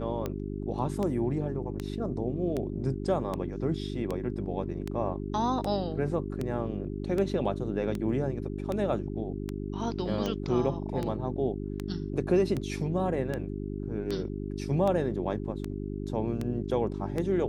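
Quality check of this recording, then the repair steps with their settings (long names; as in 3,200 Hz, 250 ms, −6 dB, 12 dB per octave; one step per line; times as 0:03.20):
mains hum 50 Hz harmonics 8 −35 dBFS
scratch tick 78 rpm −19 dBFS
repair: click removal
hum removal 50 Hz, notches 8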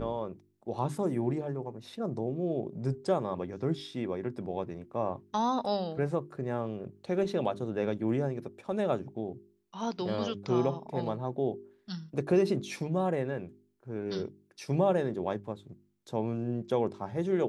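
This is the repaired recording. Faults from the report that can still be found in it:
none of them is left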